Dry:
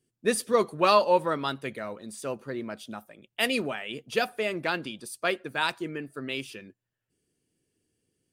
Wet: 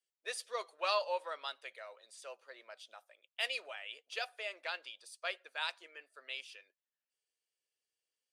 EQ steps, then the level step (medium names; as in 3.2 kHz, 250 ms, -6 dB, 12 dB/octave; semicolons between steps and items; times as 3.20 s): ladder high-pass 480 Hz, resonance 50%; low-pass 4 kHz 12 dB/octave; differentiator; +10.5 dB